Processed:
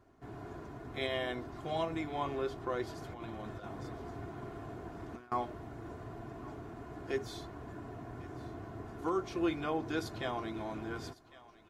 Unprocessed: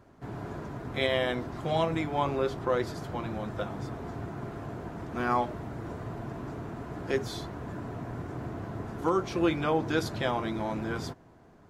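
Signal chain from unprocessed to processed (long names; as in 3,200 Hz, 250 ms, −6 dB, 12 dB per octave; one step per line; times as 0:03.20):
comb filter 2.8 ms, depth 39%
0:02.98–0:05.32: compressor whose output falls as the input rises −35 dBFS, ratio −0.5
feedback echo with a high-pass in the loop 1,105 ms, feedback 39%, high-pass 800 Hz, level −17.5 dB
level −8 dB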